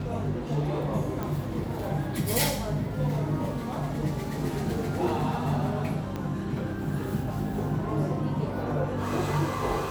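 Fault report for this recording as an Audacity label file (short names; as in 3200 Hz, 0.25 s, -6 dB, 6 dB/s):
1.230000	1.230000	pop
6.160000	6.160000	pop -21 dBFS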